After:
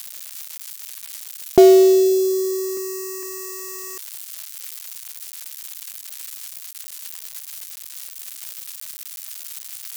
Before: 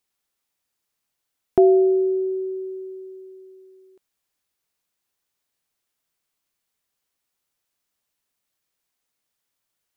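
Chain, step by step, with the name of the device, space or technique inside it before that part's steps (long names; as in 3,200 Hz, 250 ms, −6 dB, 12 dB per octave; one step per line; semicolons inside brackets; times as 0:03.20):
0:02.77–0:03.23: high-pass filter 210 Hz 12 dB per octave
budget class-D amplifier (gap after every zero crossing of 0.14 ms; spike at every zero crossing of −17.5 dBFS)
level +5 dB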